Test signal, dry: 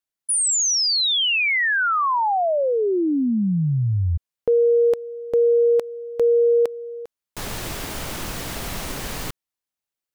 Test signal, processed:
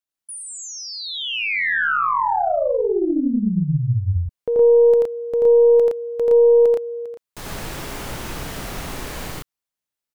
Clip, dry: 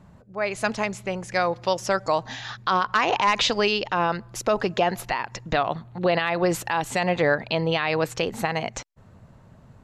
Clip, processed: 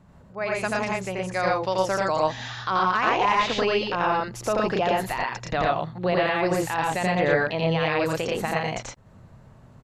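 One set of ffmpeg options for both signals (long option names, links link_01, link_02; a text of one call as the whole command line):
ffmpeg -i in.wav -filter_complex "[0:a]aecho=1:1:84.55|116.6:0.891|0.891,acrossover=split=2500[link_01][link_02];[link_02]acompressor=threshold=-30dB:ratio=4:attack=1:release=60[link_03];[link_01][link_03]amix=inputs=2:normalize=0,aeval=exprs='0.631*(cos(1*acos(clip(val(0)/0.631,-1,1)))-cos(1*PI/2))+0.0316*(cos(2*acos(clip(val(0)/0.631,-1,1)))-cos(2*PI/2))':channel_layout=same,volume=-3.5dB" out.wav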